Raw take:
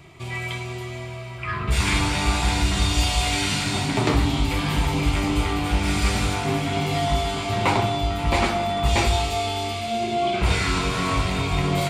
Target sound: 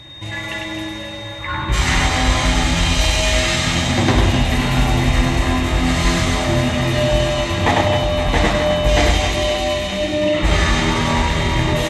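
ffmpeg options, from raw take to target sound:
-af "asetrate=38170,aresample=44100,atempo=1.15535,aeval=exprs='val(0)+0.00708*sin(2*PI*3700*n/s)':c=same,aecho=1:1:100|260|516|925.6|1581:0.631|0.398|0.251|0.158|0.1,volume=4dB"

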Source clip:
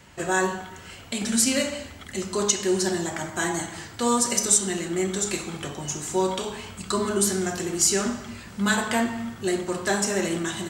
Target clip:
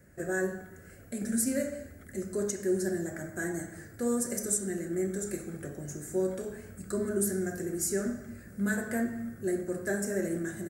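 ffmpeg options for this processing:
-af "firequalizer=gain_entry='entry(590,0);entry(930,-21);entry(1600,-1);entry(3000,-26);entry(4700,-15);entry(11000,3)':delay=0.05:min_phase=1,volume=-5dB"

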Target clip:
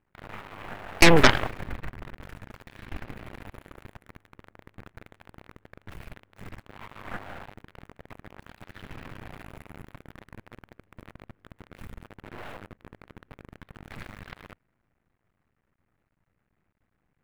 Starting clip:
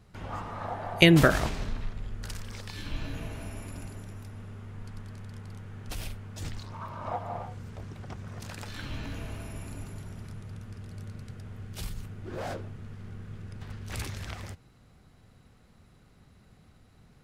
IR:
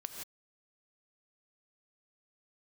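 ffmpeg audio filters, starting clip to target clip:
-af "acrusher=bits=7:dc=4:mix=0:aa=0.000001,highshelf=f=3k:t=q:w=1.5:g=-13.5,aeval=exprs='0.596*(cos(1*acos(clip(val(0)/0.596,-1,1)))-cos(1*PI/2))+0.299*(cos(6*acos(clip(val(0)/0.596,-1,1)))-cos(6*PI/2))+0.106*(cos(7*acos(clip(val(0)/0.596,-1,1)))-cos(7*PI/2))':c=same,volume=-1dB"

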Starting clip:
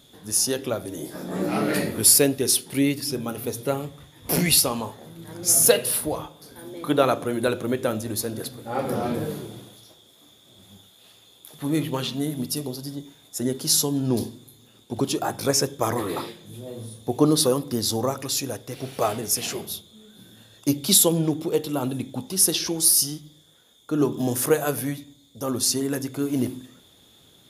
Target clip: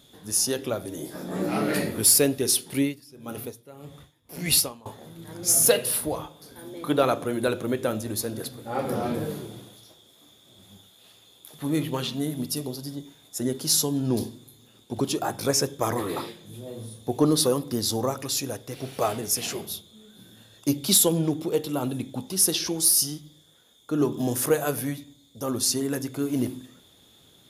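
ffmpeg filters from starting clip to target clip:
-filter_complex "[0:a]asoftclip=type=tanh:threshold=-5dB,asettb=1/sr,asplit=3[a][b][c];[a]atrim=end=2.794[d];[b]atrim=start=2.79:end=4.86,asetpts=PTS-STARTPTS,afade=t=in:d=0.004:c=qsin,afade=t=out:st=2.066:d=0.004:c=qsin,aeval=exprs='val(0)*pow(10,-21*(0.5-0.5*cos(2*PI*1.7*n/s))/20)':c=same[e];[c]atrim=start=4.856[f];[d][e]acrossfade=d=0.004:c1=hsin:c2=qsin[g];[g][f]acrossfade=d=0.004:c1=qsin:c2=hsin,volume=-1.5dB"

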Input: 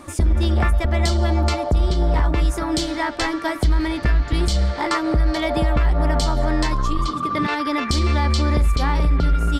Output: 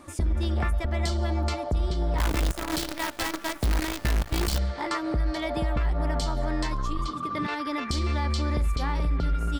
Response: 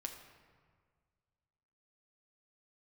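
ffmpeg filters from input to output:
-filter_complex "[0:a]asplit=3[a][b][c];[a]afade=t=out:st=2.18:d=0.02[d];[b]acrusher=bits=4:dc=4:mix=0:aa=0.000001,afade=t=in:st=2.18:d=0.02,afade=t=out:st=4.57:d=0.02[e];[c]afade=t=in:st=4.57:d=0.02[f];[d][e][f]amix=inputs=3:normalize=0,volume=-8dB"

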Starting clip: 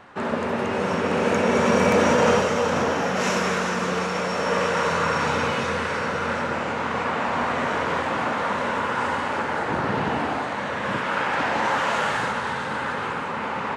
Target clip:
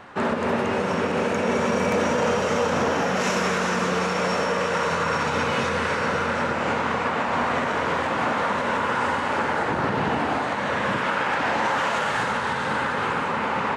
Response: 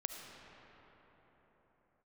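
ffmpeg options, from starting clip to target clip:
-af "alimiter=limit=-17.5dB:level=0:latency=1:release=166,volume=3.5dB"

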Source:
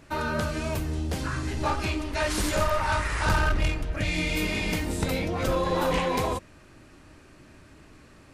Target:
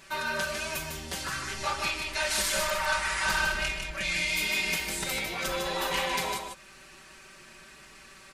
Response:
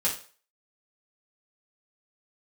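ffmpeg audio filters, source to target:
-filter_complex "[0:a]tiltshelf=f=820:g=-8.5,aecho=1:1:5.2:0.9,asplit=2[a][b];[b]acompressor=threshold=-39dB:ratio=6,volume=0dB[c];[a][c]amix=inputs=2:normalize=0,aecho=1:1:152:0.531,asettb=1/sr,asplit=3[d][e][f];[d]atrim=end=4.754[g];[e]atrim=start=4.75:end=5.34,asetpts=PTS-STARTPTS,afade=t=in:d=0.004:c=qsin,afade=t=out:st=0.586:d=0.004:c=qsin,asoftclip=type=hard:threshold=-13.5dB[h];[f]atrim=start=5.336[i];[g][h]acrossfade=d=0.004:c1=hsin:c2=qsin[j];[j][i]acrossfade=d=0.004:c1=qsin:c2=hsin,volume=-8.5dB"

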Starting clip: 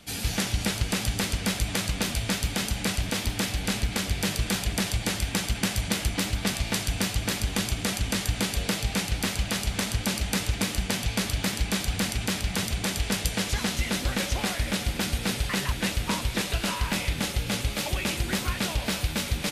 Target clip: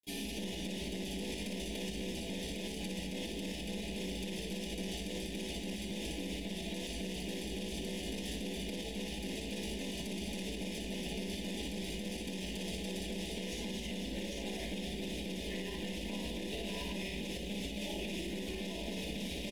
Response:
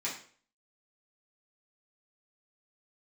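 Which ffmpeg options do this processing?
-filter_complex "[0:a]asplit=2[a][b];[b]adelay=18,volume=-9dB[c];[a][c]amix=inputs=2:normalize=0,acrusher=bits=6:mix=0:aa=0.000001,firequalizer=gain_entry='entry(450,0);entry(750,-6);entry(7700,-14)':delay=0.05:min_phase=1,acompressor=threshold=-32dB:ratio=6,lowshelf=f=360:g=-3[d];[1:a]atrim=start_sample=2205,asetrate=66150,aresample=44100[e];[d][e]afir=irnorm=-1:irlink=0,aeval=exprs='0.0501*(cos(1*acos(clip(val(0)/0.0501,-1,1)))-cos(1*PI/2))+0.0178*(cos(2*acos(clip(val(0)/0.0501,-1,1)))-cos(2*PI/2))':c=same,asuperstop=centerf=1300:order=4:qfactor=1.1,aecho=1:1:58.31|207:0.794|0.355,alimiter=level_in=10dB:limit=-24dB:level=0:latency=1:release=84,volume=-10dB,volume=4.5dB"

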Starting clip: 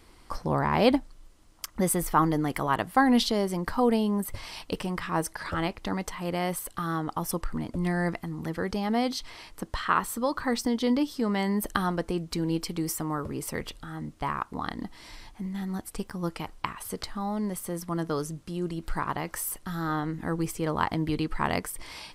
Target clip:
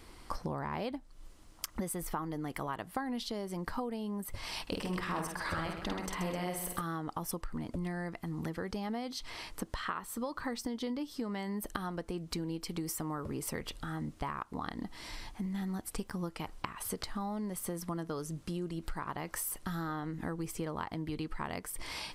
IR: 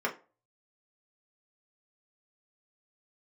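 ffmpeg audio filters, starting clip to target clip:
-filter_complex "[0:a]acompressor=threshold=-35dB:ratio=12,asettb=1/sr,asplit=3[a][b][c];[a]atrim=end=4.624[d];[b]atrim=start=4.62:end=6.81,asetpts=PTS-STARTPTS,afade=t=in:d=0.004:c=qsin,afade=t=out:st=2.186:d=0.004:c=qsin,aecho=1:1:50|130|258|462.8|790.5:0.631|0.398|0.251|0.158|0.1,atrim=end_sample=96579[e];[c]atrim=start=6.806[f];[d][e]acrossfade=d=0.004:c1=hsin:c2=qsin[g];[g][f]acrossfade=d=0.004:c1=qsin:c2=hsin,volume=1.5dB"

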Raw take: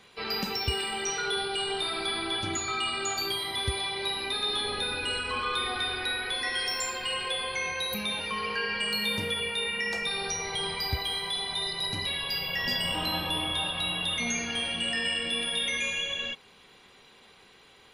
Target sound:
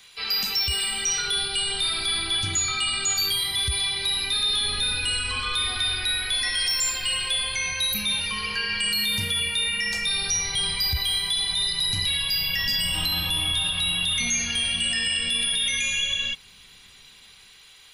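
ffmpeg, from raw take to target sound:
-filter_complex "[0:a]equalizer=f=340:w=0.32:g=-14.5,acrossover=split=270|1100|4900[a][b][c][d];[a]dynaudnorm=f=180:g=9:m=11dB[e];[e][b][c][d]amix=inputs=4:normalize=0,highshelf=f=2.7k:g=9,alimiter=limit=-20dB:level=0:latency=1:release=20,volume=4dB"

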